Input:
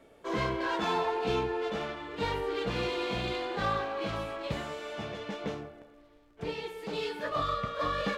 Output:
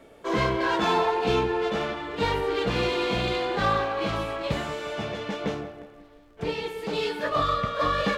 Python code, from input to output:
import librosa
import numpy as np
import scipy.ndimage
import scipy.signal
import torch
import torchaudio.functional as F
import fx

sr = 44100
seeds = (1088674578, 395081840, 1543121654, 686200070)

y = fx.echo_filtered(x, sr, ms=180, feedback_pct=47, hz=4000.0, wet_db=-16.5)
y = F.gain(torch.from_numpy(y), 6.5).numpy()